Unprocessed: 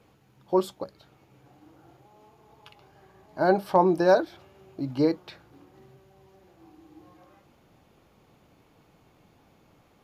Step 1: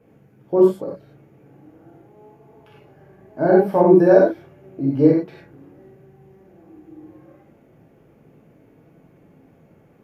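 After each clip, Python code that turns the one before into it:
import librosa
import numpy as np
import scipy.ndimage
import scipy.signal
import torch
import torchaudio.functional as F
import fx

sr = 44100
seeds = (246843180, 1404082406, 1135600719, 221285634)

y = fx.graphic_eq(x, sr, hz=(125, 250, 500, 1000, 2000, 4000, 8000), db=(6, 9, 7, -3, 5, -12, -4))
y = fx.rev_gated(y, sr, seeds[0], gate_ms=130, shape='flat', drr_db=-4.5)
y = F.gain(torch.from_numpy(y), -5.0).numpy()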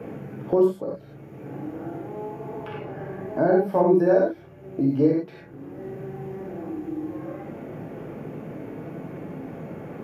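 y = fx.band_squash(x, sr, depth_pct=70)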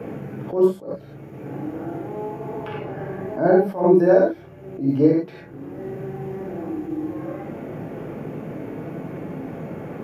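y = fx.attack_slew(x, sr, db_per_s=150.0)
y = F.gain(torch.from_numpy(y), 4.0).numpy()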